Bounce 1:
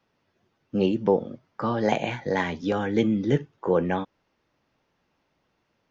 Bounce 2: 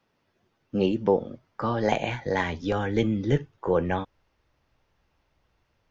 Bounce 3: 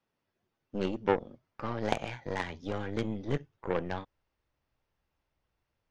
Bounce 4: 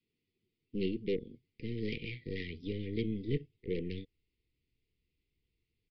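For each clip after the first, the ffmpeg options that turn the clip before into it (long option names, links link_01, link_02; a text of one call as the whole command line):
ffmpeg -i in.wav -af "asubboost=boost=7:cutoff=80" out.wav
ffmpeg -i in.wav -af "aeval=exprs='0.398*(cos(1*acos(clip(val(0)/0.398,-1,1)))-cos(1*PI/2))+0.0794*(cos(2*acos(clip(val(0)/0.398,-1,1)))-cos(2*PI/2))+0.0891*(cos(3*acos(clip(val(0)/0.398,-1,1)))-cos(3*PI/2))+0.0224*(cos(8*acos(clip(val(0)/0.398,-1,1)))-cos(8*PI/2))':channel_layout=same,volume=-1.5dB" out.wav
ffmpeg -i in.wav -af "aresample=11025,asoftclip=type=tanh:threshold=-19dB,aresample=44100,asuperstop=centerf=970:order=20:qfactor=0.64" out.wav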